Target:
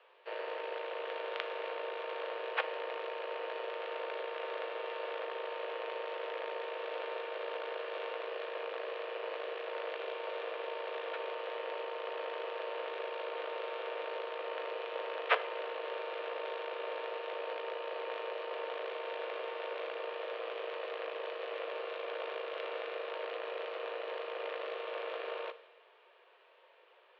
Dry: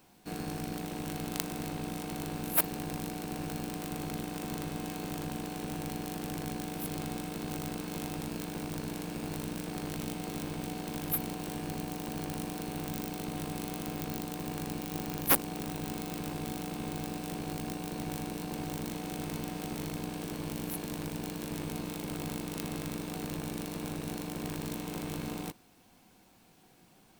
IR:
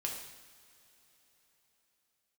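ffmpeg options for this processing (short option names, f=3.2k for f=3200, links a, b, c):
-filter_complex "[0:a]equalizer=f=680:t=o:w=0.58:g=-6,highpass=f=320:t=q:w=0.5412,highpass=f=320:t=q:w=1.307,lowpass=f=3.1k:t=q:w=0.5176,lowpass=f=3.1k:t=q:w=0.7071,lowpass=f=3.1k:t=q:w=1.932,afreqshift=170,asplit=2[a][b];[1:a]atrim=start_sample=2205[c];[b][c]afir=irnorm=-1:irlink=0,volume=-8dB[d];[a][d]amix=inputs=2:normalize=0,volume=1dB"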